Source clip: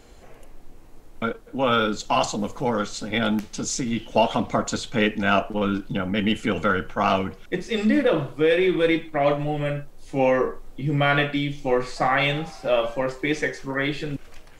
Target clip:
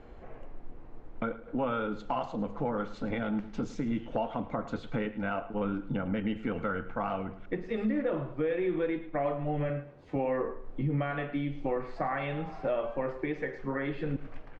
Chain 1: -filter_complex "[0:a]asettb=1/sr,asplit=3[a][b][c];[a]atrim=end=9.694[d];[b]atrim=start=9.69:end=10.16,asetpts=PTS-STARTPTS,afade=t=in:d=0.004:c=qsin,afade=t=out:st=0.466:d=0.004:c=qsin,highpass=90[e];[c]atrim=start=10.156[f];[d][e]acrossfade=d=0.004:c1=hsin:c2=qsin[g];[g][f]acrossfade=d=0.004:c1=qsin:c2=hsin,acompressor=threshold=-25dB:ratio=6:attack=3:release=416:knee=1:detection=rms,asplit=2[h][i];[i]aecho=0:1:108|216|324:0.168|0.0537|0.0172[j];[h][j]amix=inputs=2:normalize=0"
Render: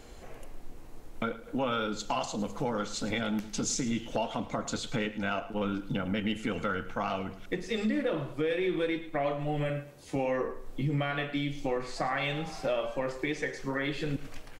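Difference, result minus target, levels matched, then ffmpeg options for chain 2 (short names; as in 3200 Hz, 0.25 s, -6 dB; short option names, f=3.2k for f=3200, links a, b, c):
2000 Hz band +3.0 dB
-filter_complex "[0:a]asettb=1/sr,asplit=3[a][b][c];[a]atrim=end=9.694[d];[b]atrim=start=9.69:end=10.16,asetpts=PTS-STARTPTS,afade=t=in:d=0.004:c=qsin,afade=t=out:st=0.466:d=0.004:c=qsin,highpass=90[e];[c]atrim=start=10.156[f];[d][e]acrossfade=d=0.004:c1=hsin:c2=qsin[g];[g][f]acrossfade=d=0.004:c1=qsin:c2=hsin,acompressor=threshold=-25dB:ratio=6:attack=3:release=416:knee=1:detection=rms,lowpass=1.7k,asplit=2[h][i];[i]aecho=0:1:108|216|324:0.168|0.0537|0.0172[j];[h][j]amix=inputs=2:normalize=0"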